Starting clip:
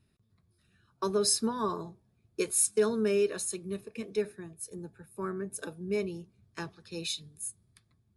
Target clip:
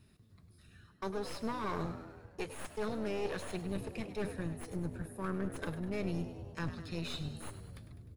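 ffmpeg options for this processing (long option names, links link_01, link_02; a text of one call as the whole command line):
ffmpeg -i in.wav -filter_complex "[0:a]asubboost=boost=8:cutoff=110,aeval=exprs='(mod(5.96*val(0)+1,2)-1)/5.96':channel_layout=same,areverse,acompressor=threshold=-38dB:ratio=12,areverse,aeval=exprs='clip(val(0),-1,0.00316)':channel_layout=same,acrossover=split=3600[link_01][link_02];[link_02]acompressor=threshold=-60dB:ratio=4:attack=1:release=60[link_03];[link_01][link_03]amix=inputs=2:normalize=0,asplit=2[link_04][link_05];[link_05]asplit=7[link_06][link_07][link_08][link_09][link_10][link_11][link_12];[link_06]adelay=101,afreqshift=79,volume=-12dB[link_13];[link_07]adelay=202,afreqshift=158,volume=-16.4dB[link_14];[link_08]adelay=303,afreqshift=237,volume=-20.9dB[link_15];[link_09]adelay=404,afreqshift=316,volume=-25.3dB[link_16];[link_10]adelay=505,afreqshift=395,volume=-29.7dB[link_17];[link_11]adelay=606,afreqshift=474,volume=-34.2dB[link_18];[link_12]adelay=707,afreqshift=553,volume=-38.6dB[link_19];[link_13][link_14][link_15][link_16][link_17][link_18][link_19]amix=inputs=7:normalize=0[link_20];[link_04][link_20]amix=inputs=2:normalize=0,volume=7dB" out.wav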